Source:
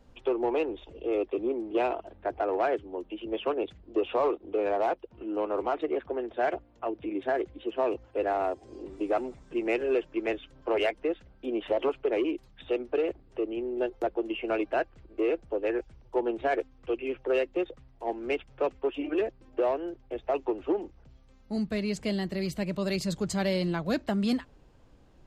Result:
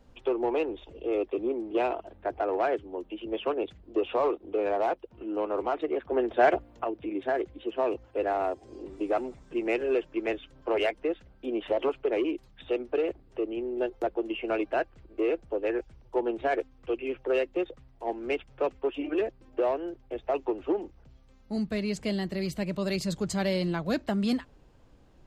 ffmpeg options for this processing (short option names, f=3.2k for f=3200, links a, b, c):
-filter_complex "[0:a]asplit=3[a][b][c];[a]atrim=end=6.122[d];[b]atrim=start=6.118:end=6.842,asetpts=PTS-STARTPTS,volume=6.5dB[e];[c]atrim=start=6.838[f];[d][e]acrossfade=d=0.004:c1=hsin:c2=hsin[g];[g][f]acrossfade=d=0.004:c1=hsin:c2=hsin"